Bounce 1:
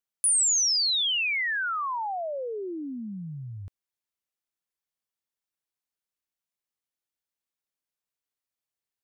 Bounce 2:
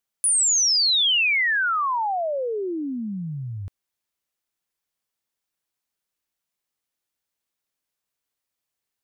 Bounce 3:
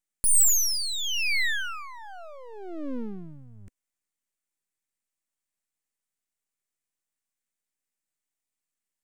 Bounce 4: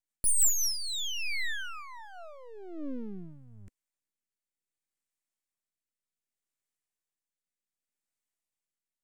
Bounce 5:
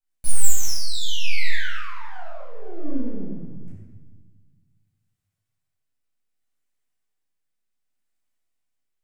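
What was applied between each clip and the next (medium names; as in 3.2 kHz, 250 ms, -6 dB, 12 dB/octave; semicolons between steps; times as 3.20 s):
peak limiter -23 dBFS, peak gain reduction 4.5 dB; trim +6.5 dB
ten-band graphic EQ 125 Hz -8 dB, 250 Hz +11 dB, 500 Hz -8 dB, 1 kHz -9 dB, 2 kHz +9 dB, 4 kHz -5 dB, 8 kHz +12 dB; half-wave rectifier; trim -6 dB
rotary cabinet horn 6.3 Hz, later 0.65 Hz, at 0.28 s; trim -2.5 dB
in parallel at -12 dB: integer overflow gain 23 dB; on the sum: reverberation RT60 1.3 s, pre-delay 8 ms, DRR -10.5 dB; trim -9 dB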